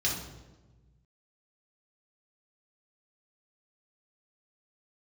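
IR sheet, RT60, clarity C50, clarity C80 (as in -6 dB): 1.2 s, 3.5 dB, 7.0 dB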